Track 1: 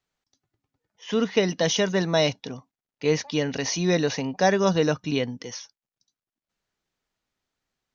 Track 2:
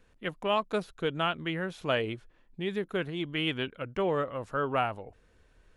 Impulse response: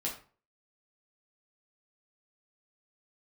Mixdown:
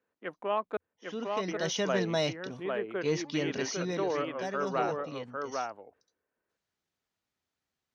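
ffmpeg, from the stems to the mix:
-filter_complex "[0:a]acontrast=87,volume=-2.5dB,afade=type=in:start_time=1.35:duration=0.5:silence=0.473151,afade=type=out:start_time=3.56:duration=0.51:silence=0.354813,afade=type=in:start_time=5.42:duration=0.36:silence=0.251189[link_01];[1:a]agate=range=-10dB:threshold=-56dB:ratio=16:detection=peak,acrossover=split=230 2200:gain=0.0794 1 0.112[link_02][link_03][link_04];[link_02][link_03][link_04]amix=inputs=3:normalize=0,volume=-2dB,asplit=3[link_05][link_06][link_07];[link_05]atrim=end=0.77,asetpts=PTS-STARTPTS,afade=type=out:start_time=0.766:duration=0.004:curve=hsin[link_08];[link_06]atrim=start=0.77:end=1.48,asetpts=PTS-STARTPTS,volume=0[link_09];[link_07]atrim=start=1.48,asetpts=PTS-STARTPTS,afade=type=in:duration=0.004:curve=hsin[link_10];[link_08][link_09][link_10]concat=n=3:v=0:a=1,asplit=2[link_11][link_12];[link_12]volume=-3.5dB,aecho=0:1:802:1[link_13];[link_01][link_11][link_13]amix=inputs=3:normalize=0,highpass=64,equalizer=frequency=87:width_type=o:width=0.25:gain=5"

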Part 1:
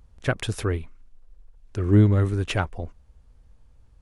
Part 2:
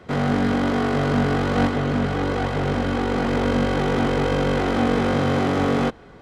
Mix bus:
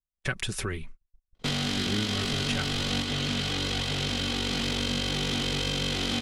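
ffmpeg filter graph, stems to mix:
ffmpeg -i stem1.wav -i stem2.wav -filter_complex "[0:a]aecho=1:1:5.3:0.53,volume=2.5dB[link_01];[1:a]highshelf=frequency=2400:width_type=q:width=1.5:gain=10,adelay=1350,volume=1dB[link_02];[link_01][link_02]amix=inputs=2:normalize=0,agate=range=-47dB:threshold=-35dB:ratio=16:detection=peak,acrossover=split=280|1500[link_03][link_04][link_05];[link_03]acompressor=threshold=-32dB:ratio=4[link_06];[link_04]acompressor=threshold=-42dB:ratio=4[link_07];[link_05]acompressor=threshold=-28dB:ratio=4[link_08];[link_06][link_07][link_08]amix=inputs=3:normalize=0" out.wav

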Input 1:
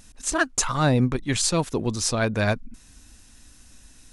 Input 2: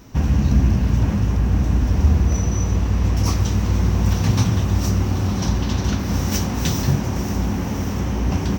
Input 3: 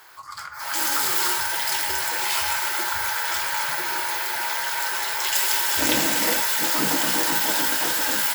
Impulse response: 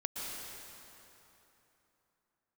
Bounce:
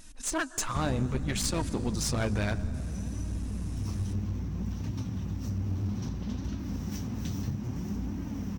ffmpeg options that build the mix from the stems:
-filter_complex "[0:a]acompressor=threshold=-30dB:ratio=2,volume=2dB,asplit=2[link_01][link_02];[link_02]volume=-17dB[link_03];[1:a]lowshelf=frequency=350:width_type=q:width=1.5:gain=7,acompressor=threshold=-10dB:ratio=6,adelay=600,volume=-13.5dB[link_04];[3:a]atrim=start_sample=2205[link_05];[link_03][link_05]afir=irnorm=-1:irlink=0[link_06];[link_01][link_04][link_06]amix=inputs=3:normalize=0,flanger=delay=3.1:depth=7.1:regen=48:speed=0.61:shape=sinusoidal,aeval=exprs='clip(val(0),-1,0.0355)':channel_layout=same"

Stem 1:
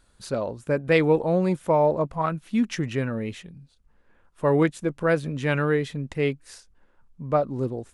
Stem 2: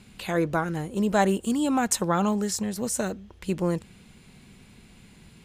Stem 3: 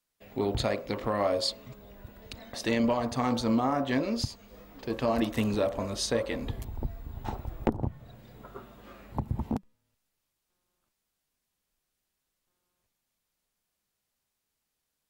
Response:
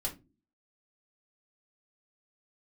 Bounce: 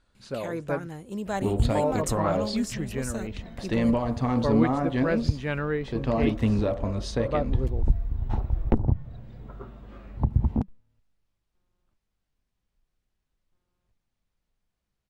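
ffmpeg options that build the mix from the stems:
-filter_complex "[0:a]lowpass=5300,volume=-5.5dB,asplit=3[link_01][link_02][link_03];[link_01]atrim=end=0.87,asetpts=PTS-STARTPTS,afade=type=out:start_time=0.866:duration=0.004:curve=hsin[link_04];[link_02]atrim=start=0.87:end=1.75,asetpts=PTS-STARTPTS,volume=0[link_05];[link_03]atrim=start=1.75,asetpts=PTS-STARTPTS,afade=type=in:duration=0.004:curve=hsin[link_06];[link_04][link_05][link_06]concat=n=3:v=0:a=1[link_07];[1:a]adelay=150,volume=-8.5dB[link_08];[2:a]aemphasis=mode=reproduction:type=bsi,adelay=1050,volume=-1dB[link_09];[link_07][link_08][link_09]amix=inputs=3:normalize=0"

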